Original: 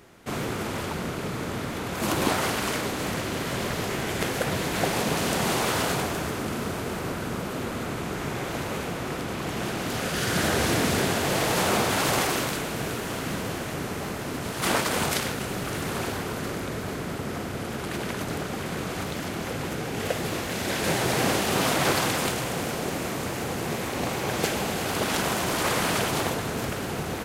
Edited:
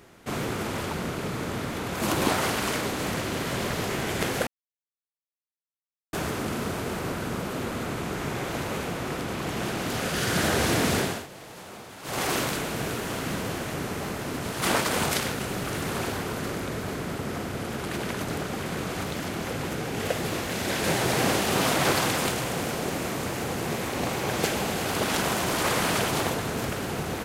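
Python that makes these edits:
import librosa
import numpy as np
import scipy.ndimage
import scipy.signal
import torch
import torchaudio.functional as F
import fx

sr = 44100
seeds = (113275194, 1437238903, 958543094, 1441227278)

y = fx.edit(x, sr, fx.silence(start_s=4.47, length_s=1.66),
    fx.fade_down_up(start_s=10.96, length_s=1.37, db=-19.5, fade_s=0.31), tone=tone)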